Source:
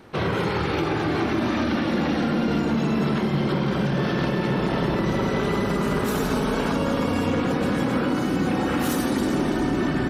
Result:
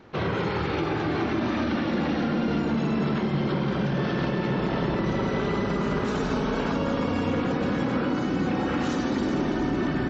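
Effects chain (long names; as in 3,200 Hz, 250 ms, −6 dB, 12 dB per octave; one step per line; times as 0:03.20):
high-frequency loss of the air 62 metres
downsampling to 16,000 Hz
level −2.5 dB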